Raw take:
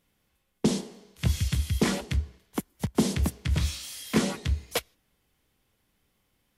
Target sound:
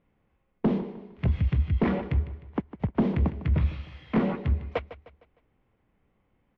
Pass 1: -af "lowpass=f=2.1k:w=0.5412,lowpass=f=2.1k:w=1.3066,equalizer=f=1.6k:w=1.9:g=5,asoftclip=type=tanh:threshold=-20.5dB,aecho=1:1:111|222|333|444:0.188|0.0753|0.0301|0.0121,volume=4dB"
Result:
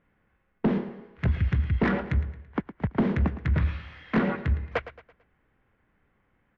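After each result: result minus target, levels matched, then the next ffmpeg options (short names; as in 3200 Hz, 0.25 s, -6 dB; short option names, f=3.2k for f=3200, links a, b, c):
2000 Hz band +7.0 dB; echo 42 ms early
-af "lowpass=f=2.1k:w=0.5412,lowpass=f=2.1k:w=1.3066,equalizer=f=1.6k:w=1.9:g=-6,asoftclip=type=tanh:threshold=-20.5dB,aecho=1:1:111|222|333|444:0.188|0.0753|0.0301|0.0121,volume=4dB"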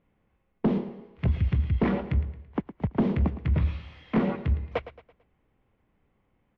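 echo 42 ms early
-af "lowpass=f=2.1k:w=0.5412,lowpass=f=2.1k:w=1.3066,equalizer=f=1.6k:w=1.9:g=-6,asoftclip=type=tanh:threshold=-20.5dB,aecho=1:1:153|306|459|612:0.188|0.0753|0.0301|0.0121,volume=4dB"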